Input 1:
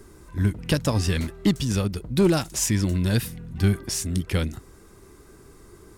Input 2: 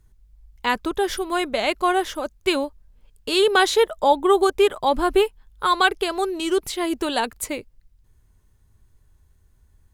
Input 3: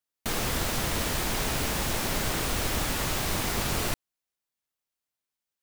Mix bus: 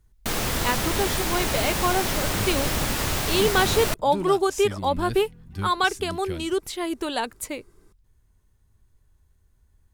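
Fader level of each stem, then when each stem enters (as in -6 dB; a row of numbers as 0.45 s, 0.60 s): -11.0 dB, -4.0 dB, +3.0 dB; 1.95 s, 0.00 s, 0.00 s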